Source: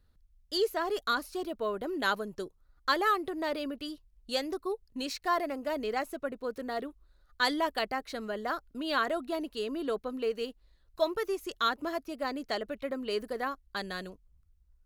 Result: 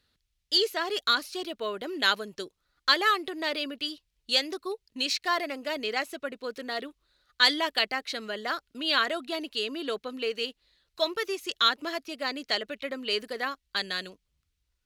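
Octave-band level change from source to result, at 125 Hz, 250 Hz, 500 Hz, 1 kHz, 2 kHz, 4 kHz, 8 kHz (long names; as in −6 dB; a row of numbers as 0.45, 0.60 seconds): can't be measured, −1.0 dB, −0.5 dB, +1.0 dB, +6.0 dB, +11.0 dB, +6.0 dB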